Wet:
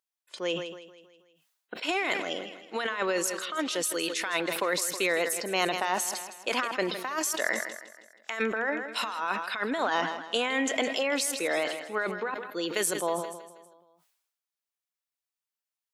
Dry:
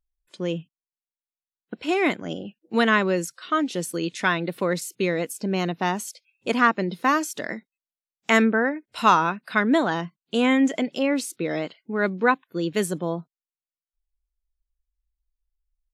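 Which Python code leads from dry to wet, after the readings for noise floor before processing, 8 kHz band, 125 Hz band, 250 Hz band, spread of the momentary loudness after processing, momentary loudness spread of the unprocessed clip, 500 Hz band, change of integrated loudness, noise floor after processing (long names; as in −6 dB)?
below −85 dBFS, +4.0 dB, −15.5 dB, −11.5 dB, 8 LU, 12 LU, −4.5 dB, −5.5 dB, below −85 dBFS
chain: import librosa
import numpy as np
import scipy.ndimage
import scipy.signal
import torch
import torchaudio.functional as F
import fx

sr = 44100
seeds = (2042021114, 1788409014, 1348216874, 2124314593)

p1 = scipy.signal.sosfilt(scipy.signal.butter(2, 630.0, 'highpass', fs=sr, output='sos'), x)
p2 = fx.over_compress(p1, sr, threshold_db=-29.0, ratio=-1.0)
p3 = p2 + fx.echo_feedback(p2, sr, ms=160, feedback_pct=54, wet_db=-14, dry=0)
y = fx.sustainer(p3, sr, db_per_s=61.0)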